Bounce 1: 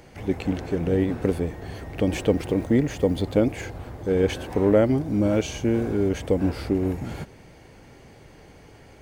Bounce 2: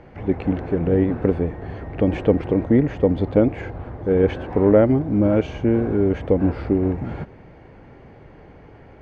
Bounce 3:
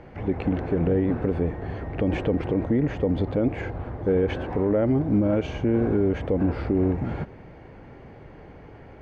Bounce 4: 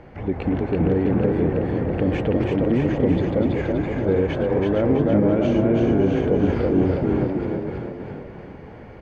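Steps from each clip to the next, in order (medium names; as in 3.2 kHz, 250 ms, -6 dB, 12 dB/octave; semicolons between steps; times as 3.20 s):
low-pass 1.8 kHz 12 dB/octave; trim +4 dB
peak limiter -13.5 dBFS, peak gain reduction 10 dB
chunks repeated in reverse 414 ms, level -6 dB; frequency-shifting echo 328 ms, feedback 47%, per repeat +33 Hz, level -3 dB; trim +1 dB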